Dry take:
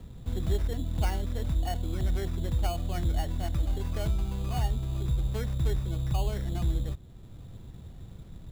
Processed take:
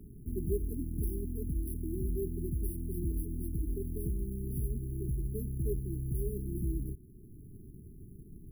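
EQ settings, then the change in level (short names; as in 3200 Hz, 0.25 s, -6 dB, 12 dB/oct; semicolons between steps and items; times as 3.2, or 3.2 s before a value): brick-wall FIR band-stop 440–10000 Hz; low shelf 74 Hz -8 dB; bell 97 Hz -8 dB 2.5 oct; +4.0 dB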